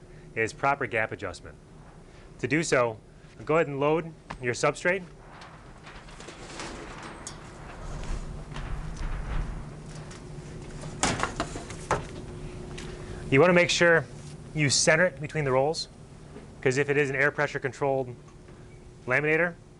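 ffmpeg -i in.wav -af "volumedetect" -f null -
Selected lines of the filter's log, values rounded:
mean_volume: -28.8 dB
max_volume: -7.8 dB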